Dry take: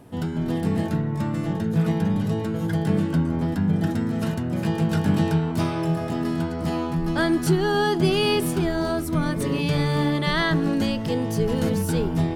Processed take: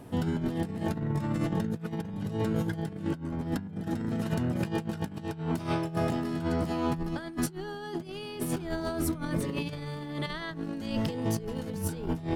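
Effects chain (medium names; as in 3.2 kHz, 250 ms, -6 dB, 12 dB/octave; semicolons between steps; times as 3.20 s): compressor with a negative ratio -27 dBFS, ratio -0.5; trim -4 dB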